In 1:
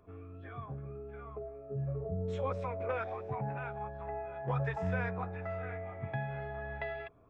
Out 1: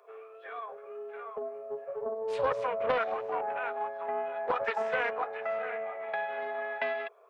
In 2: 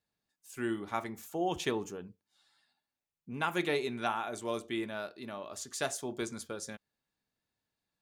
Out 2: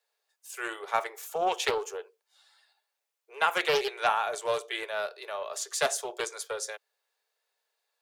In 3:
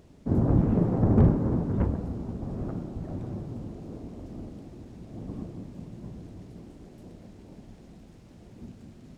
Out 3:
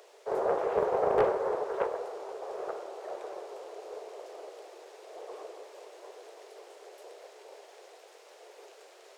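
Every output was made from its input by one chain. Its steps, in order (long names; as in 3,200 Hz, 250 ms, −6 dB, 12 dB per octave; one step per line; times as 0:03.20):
Butterworth high-pass 410 Hz 72 dB per octave
highs frequency-modulated by the lows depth 0.23 ms
level +7.5 dB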